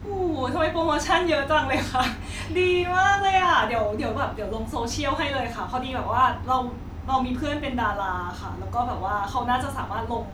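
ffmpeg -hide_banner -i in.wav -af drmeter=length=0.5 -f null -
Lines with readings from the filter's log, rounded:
Channel 1: DR: 11.1
Overall DR: 11.1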